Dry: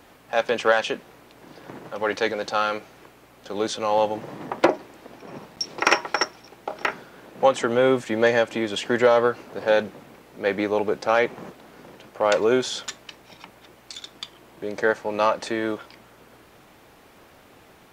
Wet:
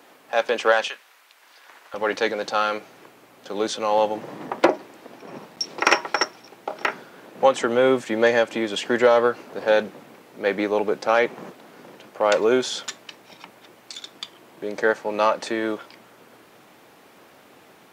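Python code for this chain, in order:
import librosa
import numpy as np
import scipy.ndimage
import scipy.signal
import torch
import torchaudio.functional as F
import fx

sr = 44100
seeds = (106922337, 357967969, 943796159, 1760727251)

y = fx.highpass(x, sr, hz=fx.steps((0.0, 270.0), (0.88, 1300.0), (1.94, 160.0)), slope=12)
y = y * librosa.db_to_amplitude(1.0)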